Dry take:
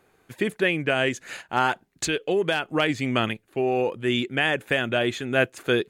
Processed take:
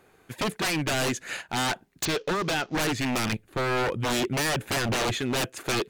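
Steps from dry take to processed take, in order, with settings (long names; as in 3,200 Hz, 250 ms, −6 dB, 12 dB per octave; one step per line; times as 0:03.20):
0:02.05–0:02.77: variable-slope delta modulation 32 kbit/s
0:03.32–0:05.16: low-shelf EQ 170 Hz +11.5 dB
wave folding −24 dBFS
level +3 dB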